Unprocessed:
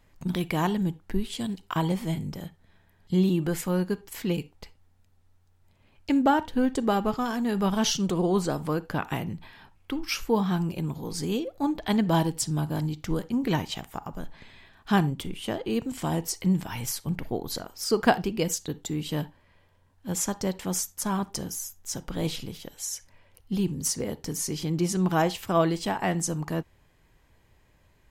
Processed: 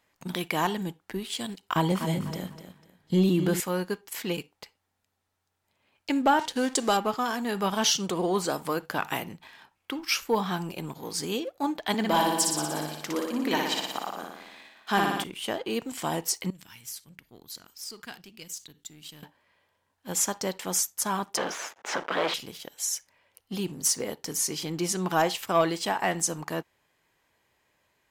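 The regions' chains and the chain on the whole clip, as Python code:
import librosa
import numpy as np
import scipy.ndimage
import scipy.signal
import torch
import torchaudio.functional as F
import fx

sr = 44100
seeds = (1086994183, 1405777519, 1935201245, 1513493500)

y = fx.chain(x, sr, fx.low_shelf(hz=370.0, db=9.0),
    fx.echo_feedback(ms=249, feedback_pct=33, wet_db=-10.0), at=(1.69, 3.6))
y = fx.chain(y, sr, fx.law_mismatch(coded='mu'),
    fx.lowpass(hz=7900.0, slope=12),
    fx.bass_treble(bass_db=-2, treble_db=13), at=(6.39, 6.97))
y = fx.chain(y, sr, fx.high_shelf(hz=5400.0, db=5.0),
    fx.hum_notches(base_hz=50, count=4), at=(8.46, 9.32))
y = fx.chain(y, sr, fx.highpass(hz=200.0, slope=24),
    fx.room_flutter(wall_m=10.2, rt60_s=1.1), at=(11.94, 15.24))
y = fx.chain(y, sr, fx.tone_stack(knobs='6-0-2'),
    fx.env_flatten(amount_pct=50), at=(16.5, 19.23))
y = fx.chain(y, sr, fx.leveller(passes=5),
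    fx.bandpass_edges(low_hz=420.0, high_hz=2100.0),
    fx.band_squash(depth_pct=40), at=(21.37, 22.34))
y = fx.highpass(y, sr, hz=600.0, slope=6)
y = fx.leveller(y, sr, passes=1)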